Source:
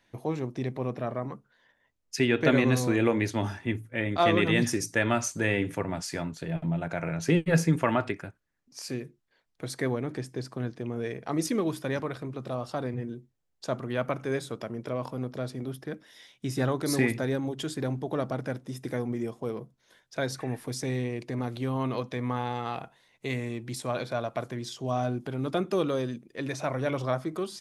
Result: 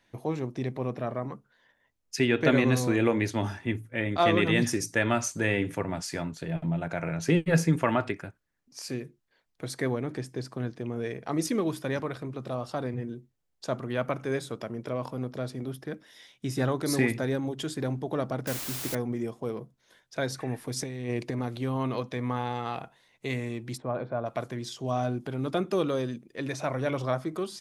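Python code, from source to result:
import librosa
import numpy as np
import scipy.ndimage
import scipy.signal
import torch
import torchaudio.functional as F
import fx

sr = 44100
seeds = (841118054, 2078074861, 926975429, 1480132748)

y = fx.quant_dither(x, sr, seeds[0], bits=6, dither='triangular', at=(18.47, 18.95))
y = fx.over_compress(y, sr, threshold_db=-33.0, ratio=-0.5, at=(20.76, 21.3), fade=0.02)
y = fx.lowpass(y, sr, hz=1200.0, slope=12, at=(23.76, 24.25), fade=0.02)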